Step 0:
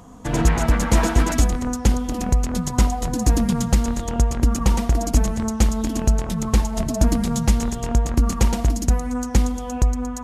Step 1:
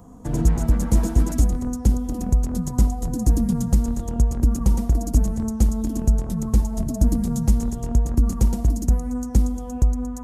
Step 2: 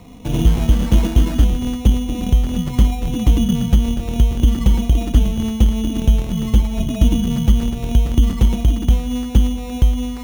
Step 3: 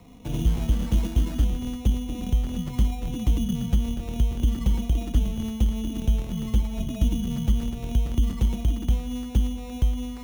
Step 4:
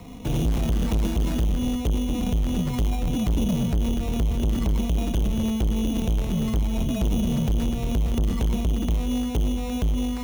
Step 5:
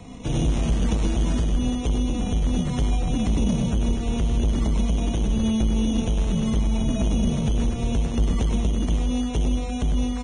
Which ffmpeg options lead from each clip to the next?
-filter_complex "[0:a]equalizer=f=2900:t=o:w=2.5:g=-14,acrossover=split=340|3000[s0][s1][s2];[s1]acompressor=threshold=0.01:ratio=2[s3];[s0][s3][s2]amix=inputs=3:normalize=0"
-af "highshelf=f=4800:g=-9.5,acrusher=samples=14:mix=1:aa=0.000001,volume=1.68"
-filter_complex "[0:a]acrossover=split=260|3000[s0][s1][s2];[s1]acompressor=threshold=0.0447:ratio=6[s3];[s0][s3][s2]amix=inputs=3:normalize=0,volume=0.376"
-af "asoftclip=type=tanh:threshold=0.0422,volume=2.66"
-filter_complex "[0:a]asplit=2[s0][s1];[s1]aecho=0:1:100:0.447[s2];[s0][s2]amix=inputs=2:normalize=0" -ar 22050 -c:a libvorbis -b:a 16k

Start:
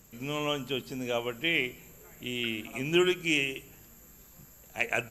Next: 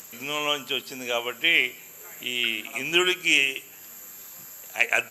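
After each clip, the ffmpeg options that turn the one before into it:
-filter_complex "[0:a]highpass=f=1100:p=1,asplit=2[s0][s1];[s1]acompressor=mode=upward:threshold=0.01:ratio=2.5,volume=0.891[s2];[s0][s2]amix=inputs=2:normalize=0,volume=1.5"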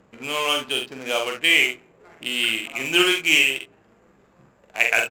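-af "adynamicsmooth=sensitivity=8:basefreq=630,aecho=1:1:45|69:0.596|0.299,volume=1.26"

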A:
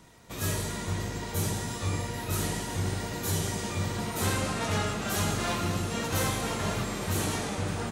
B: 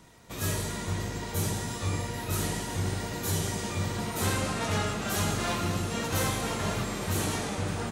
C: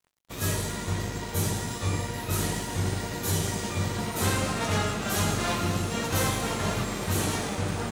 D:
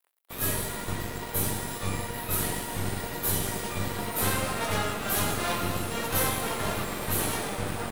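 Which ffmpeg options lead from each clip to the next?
-af anull
-af "aeval=exprs='sgn(val(0))*max(abs(val(0))-0.00398,0)':c=same,volume=1.41"
-filter_complex "[0:a]acrossover=split=370|7800[s0][s1][s2];[s0]acrusher=bits=4:dc=4:mix=0:aa=0.000001[s3];[s1]adynamicsmooth=sensitivity=4.5:basefreq=6100[s4];[s2]crystalizer=i=1:c=0[s5];[s3][s4][s5]amix=inputs=3:normalize=0"

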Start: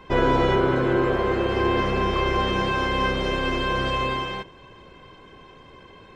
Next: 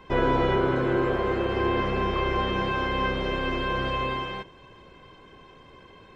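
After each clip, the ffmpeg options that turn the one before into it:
-filter_complex "[0:a]acrossover=split=4100[s0][s1];[s1]acompressor=threshold=0.00224:ratio=4:attack=1:release=60[s2];[s0][s2]amix=inputs=2:normalize=0,volume=0.708"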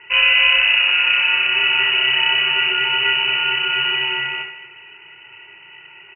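-af "aecho=1:1:30|75|142.5|243.8|395.6:0.631|0.398|0.251|0.158|0.1,lowpass=f=2600:t=q:w=0.5098,lowpass=f=2600:t=q:w=0.6013,lowpass=f=2600:t=q:w=0.9,lowpass=f=2600:t=q:w=2.563,afreqshift=-3000,volume=2"

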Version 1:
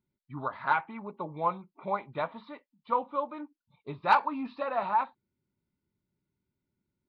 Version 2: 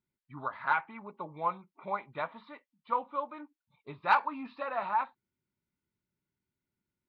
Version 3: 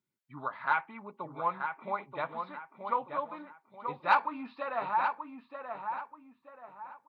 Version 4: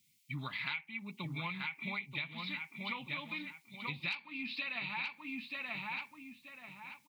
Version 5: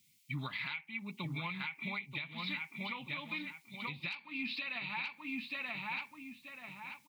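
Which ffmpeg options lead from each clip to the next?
-af "equalizer=f=1800:w=0.65:g=7,volume=0.473"
-filter_complex "[0:a]highpass=120,asplit=2[s0][s1];[s1]adelay=931,lowpass=f=2400:p=1,volume=0.501,asplit=2[s2][s3];[s3]adelay=931,lowpass=f=2400:p=1,volume=0.35,asplit=2[s4][s5];[s5]adelay=931,lowpass=f=2400:p=1,volume=0.35,asplit=2[s6][s7];[s7]adelay=931,lowpass=f=2400:p=1,volume=0.35[s8];[s2][s4][s6][s8]amix=inputs=4:normalize=0[s9];[s0][s9]amix=inputs=2:normalize=0"
-af "firequalizer=gain_entry='entry(170,0);entry(480,-24);entry(850,-21);entry(1500,-18);entry(2200,9)':delay=0.05:min_phase=1,acompressor=threshold=0.00447:ratio=16,volume=3.76"
-af "alimiter=level_in=2.24:limit=0.0631:level=0:latency=1:release=288,volume=0.447,volume=1.33"

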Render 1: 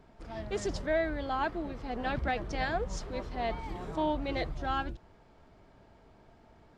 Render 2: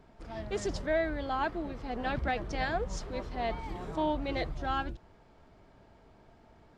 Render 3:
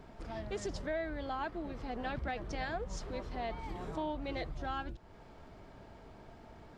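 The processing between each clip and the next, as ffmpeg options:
-af anull
-af "acompressor=threshold=0.00355:ratio=2,volume=1.78"

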